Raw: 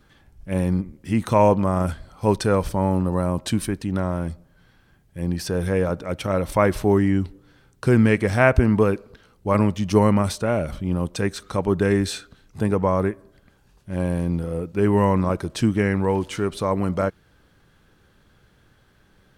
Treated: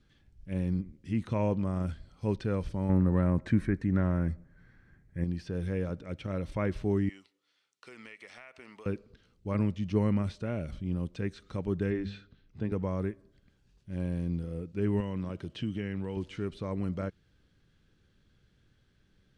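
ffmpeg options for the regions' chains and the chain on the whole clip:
-filter_complex "[0:a]asettb=1/sr,asplit=3[a][b][c];[a]atrim=end=2.894[d];[b]atrim=start=2.89:end=5.24,asetpts=PTS-STARTPTS,afade=t=in:d=0.004:c=qsin,afade=t=out:st=2.346:d=0.004:c=qsin,highshelf=f=2.4k:t=q:w=3:g=-7.5,bandreject=f=4.9k:w=16,acontrast=65[e];[c]atrim=start=5.236[f];[d][e]acrossfade=d=0.004:c1=hsin:c2=qsin[g];[g][f]acrossfade=d=0.004:c1=qsin:c2=hsin,asettb=1/sr,asplit=3[h][i][j];[h]atrim=end=7.094[k];[i]atrim=start=7.09:end=8.86,asetpts=PTS-STARTPTS,afade=t=in:d=0.004:c=qsin,afade=t=out:st=1.766:d=0.004:c=qsin,highpass=1k,bandreject=f=1.6k:w=6.2,acompressor=threshold=-30dB:ratio=10:attack=3.2:release=140:knee=1:detection=peak[l];[j]atrim=start=8.856[m];[k][l]acrossfade=d=0.004:c1=hsin:c2=qsin[n];[n][m]acrossfade=d=0.004:c1=qsin:c2=hsin,asettb=1/sr,asplit=3[o][p][q];[o]atrim=end=11.904[r];[p]atrim=start=11.9:end=12.72,asetpts=PTS-STARTPTS,afade=t=in:d=0.004:c=qsin,afade=t=out:st=0.816:d=0.004:c=qsin,lowpass=3.5k,bandreject=f=50:t=h:w=6,bandreject=f=100:t=h:w=6,bandreject=f=150:t=h:w=6,bandreject=f=200:t=h:w=6[s];[q]atrim=start=12.716[t];[r][s]acrossfade=d=0.004:c1=hsin:c2=qsin[u];[u][t]acrossfade=d=0.004:c1=qsin:c2=hsin,asettb=1/sr,asplit=3[v][w][x];[v]atrim=end=15.004[y];[w]atrim=start=15:end=16.17,asetpts=PTS-STARTPTS,afade=t=in:d=0.004:c=qsin,afade=t=out:st=1.166:d=0.004:c=qsin,highpass=78,equalizer=f=3k:w=6:g=11.5,acompressor=threshold=-22dB:ratio=2:attack=3.2:release=140:knee=1:detection=peak[z];[x]atrim=start=16.166[aa];[y][z]acrossfade=d=0.004:c1=hsin:c2=qsin[ab];[ab][aa]acrossfade=d=0.004:c1=qsin:c2=hsin,lowpass=6.2k,acrossover=split=3300[ac][ad];[ad]acompressor=threshold=-51dB:ratio=4:attack=1:release=60[ae];[ac][ae]amix=inputs=2:normalize=0,equalizer=f=900:t=o:w=1.9:g=-11.5,volume=-7.5dB"

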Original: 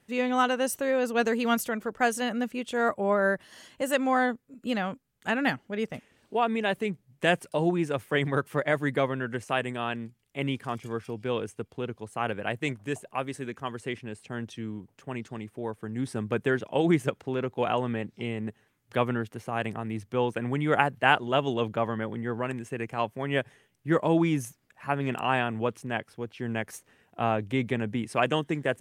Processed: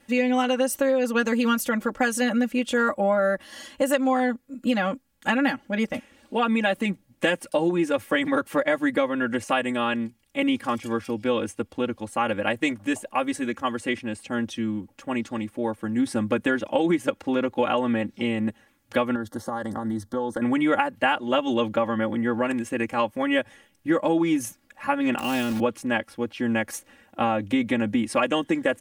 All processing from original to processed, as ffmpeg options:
-filter_complex "[0:a]asettb=1/sr,asplit=3[a][b][c];[a]atrim=end=19.154[d];[b]atrim=start=19.15:end=20.42,asetpts=PTS-STARTPTS,afade=t=in:d=0.004:c=qsin,afade=t=out:st=1.266:d=0.004:c=qsin,acompressor=threshold=-30dB:ratio=10:attack=3.2:release=140:knee=1:detection=peak,asuperstop=centerf=2500:order=4:qfactor=1.4[e];[c]atrim=start=20.416[f];[d][e]acrossfade=d=0.004:c1=hsin:c2=qsin[g];[g][f]acrossfade=d=0.004:c1=qsin:c2=hsin,asettb=1/sr,asplit=3[h][i][j];[h]atrim=end=25.194[k];[i]atrim=start=25.19:end=25.6,asetpts=PTS-STARTPTS,afade=t=in:d=0.004:c=qsin,afade=t=out:st=0.406:d=0.004:c=qsin,bandreject=f=52.8:t=h:w=4,bandreject=f=105.6:t=h:w=4,bandreject=f=158.4:t=h:w=4,acrossover=split=440|3000[l][m][n];[m]acompressor=threshold=-43dB:ratio=3:attack=3.2:release=140:knee=2.83:detection=peak[o];[l][o][n]amix=inputs=3:normalize=0,acrusher=bits=3:mode=log:mix=0:aa=0.000001[p];[j]atrim=start=25.596[q];[k][p]acrossfade=d=0.004:c1=hsin:c2=qsin[r];[r][q]acrossfade=d=0.004:c1=qsin:c2=hsin,aecho=1:1:3.6:0.98,acompressor=threshold=-24dB:ratio=6,volume=5.5dB"

